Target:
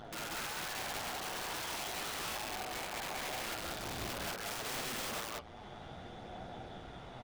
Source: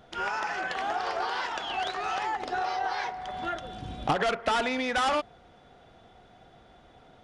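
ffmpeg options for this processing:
-filter_complex "[0:a]asettb=1/sr,asplit=3[a][b][c];[a]atrim=end=2.484[d];[b]atrim=start=2.48:end=3.36,asetpts=PTS-STARTPTS,afade=t=in:d=0.004:c=qsin,afade=t=out:st=0.876:d=0.004:c=qsin,lowpass=f=1.3k:p=1[e];[c]atrim=start=3.356[f];[d][e]acrossfade=d=0.004:c1=hsin:c2=qsin[g];[g][f]acrossfade=d=0.004:c1=qsin:c2=hsin,asettb=1/sr,asplit=3[h][i][j];[h]atrim=end=4.104[k];[i]atrim=start=4.1:end=4.87,asetpts=PTS-STARTPTS,afade=t=in:d=0.004:c=qsin,afade=t=out:st=0.766:d=0.004:c=qsin,lowshelf=f=330:g=-6[l];[j]atrim=start=4.866[m];[k][l]acrossfade=d=0.004:c1=hsin:c2=qsin[n];[n][m]acrossfade=d=0.004:c1=qsin:c2=hsin,acompressor=threshold=-42dB:ratio=10,aphaser=in_gain=1:out_gain=1:delay=1.1:decay=0.28:speed=0.63:type=triangular,tremolo=f=110:d=0.947,flanger=delay=8.1:depth=7.9:regen=23:speed=1.8:shape=sinusoidal,aeval=exprs='(mod(224*val(0)+1,2)-1)/224':c=same,aecho=1:1:49.56|186.6:0.501|1,volume=10.5dB"

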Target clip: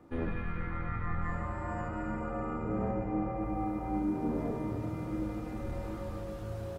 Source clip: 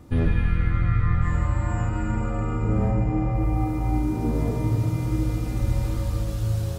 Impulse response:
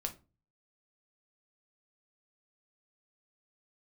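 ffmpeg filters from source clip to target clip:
-filter_complex "[0:a]asoftclip=type=tanh:threshold=-10.5dB,acrossover=split=220 2300:gain=0.2 1 0.224[a][b][c];[a][b][c]amix=inputs=3:normalize=0,asplit=2[d][e];[e]asetrate=29433,aresample=44100,atempo=1.49831,volume=-10dB[f];[d][f]amix=inputs=2:normalize=0,asplit=2[g][h];[1:a]atrim=start_sample=2205[i];[h][i]afir=irnorm=-1:irlink=0,volume=-2dB[j];[g][j]amix=inputs=2:normalize=0,volume=-9dB"

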